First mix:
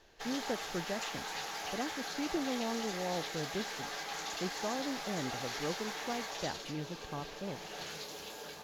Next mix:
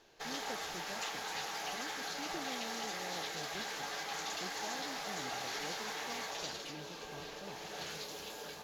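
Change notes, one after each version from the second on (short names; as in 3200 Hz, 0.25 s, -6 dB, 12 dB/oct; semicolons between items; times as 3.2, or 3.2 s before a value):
speech -11.0 dB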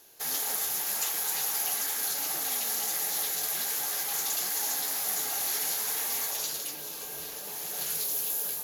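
speech -7.5 dB; master: remove air absorption 170 m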